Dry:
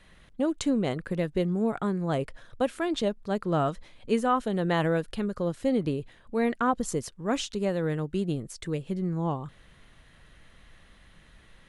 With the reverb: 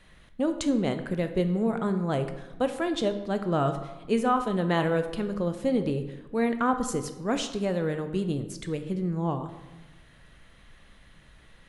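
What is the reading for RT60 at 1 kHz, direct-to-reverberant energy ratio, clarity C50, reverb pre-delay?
1.1 s, 8.0 dB, 10.5 dB, 12 ms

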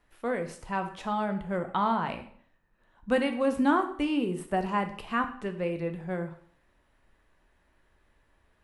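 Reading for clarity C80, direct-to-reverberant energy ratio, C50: 14.5 dB, 6.0 dB, 11.0 dB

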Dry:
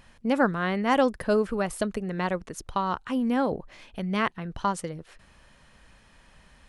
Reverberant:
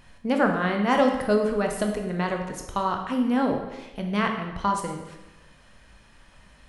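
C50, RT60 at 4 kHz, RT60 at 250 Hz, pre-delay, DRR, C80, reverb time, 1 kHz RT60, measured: 5.5 dB, 0.85 s, 1.1 s, 14 ms, 2.5 dB, 7.5 dB, 1.0 s, 1.0 s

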